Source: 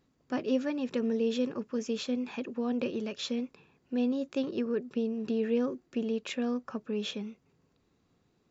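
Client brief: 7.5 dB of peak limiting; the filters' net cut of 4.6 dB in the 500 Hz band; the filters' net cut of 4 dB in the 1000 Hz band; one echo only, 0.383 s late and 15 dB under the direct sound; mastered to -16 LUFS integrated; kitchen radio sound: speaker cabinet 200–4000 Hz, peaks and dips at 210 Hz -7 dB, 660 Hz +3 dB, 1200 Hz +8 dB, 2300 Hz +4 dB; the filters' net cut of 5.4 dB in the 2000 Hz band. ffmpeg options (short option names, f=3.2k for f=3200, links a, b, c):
-af "equalizer=f=500:t=o:g=-3.5,equalizer=f=1k:t=o:g=-7.5,equalizer=f=2k:t=o:g=-9,alimiter=level_in=4.5dB:limit=-24dB:level=0:latency=1,volume=-4.5dB,highpass=200,equalizer=f=210:t=q:w=4:g=-7,equalizer=f=660:t=q:w=4:g=3,equalizer=f=1.2k:t=q:w=4:g=8,equalizer=f=2.3k:t=q:w=4:g=4,lowpass=f=4k:w=0.5412,lowpass=f=4k:w=1.3066,aecho=1:1:383:0.178,volume=24dB"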